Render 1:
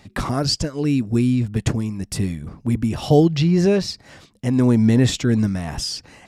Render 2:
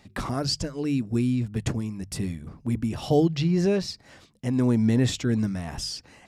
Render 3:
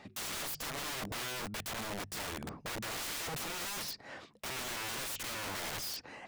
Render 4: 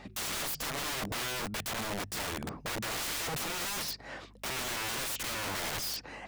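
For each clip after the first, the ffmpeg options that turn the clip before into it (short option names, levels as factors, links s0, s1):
-af "bandreject=f=50:t=h:w=6,bandreject=f=100:t=h:w=6,bandreject=f=150:t=h:w=6,volume=0.501"
-filter_complex "[0:a]asplit=2[s0][s1];[s1]highpass=f=720:p=1,volume=12.6,asoftclip=type=tanh:threshold=0.299[s2];[s0][s2]amix=inputs=2:normalize=0,lowpass=f=1200:p=1,volume=0.501,aeval=exprs='(mod(23.7*val(0)+1,2)-1)/23.7':c=same,volume=0.447"
-af "aeval=exprs='val(0)+0.001*(sin(2*PI*50*n/s)+sin(2*PI*2*50*n/s)/2+sin(2*PI*3*50*n/s)/3+sin(2*PI*4*50*n/s)/4+sin(2*PI*5*50*n/s)/5)':c=same,volume=1.58"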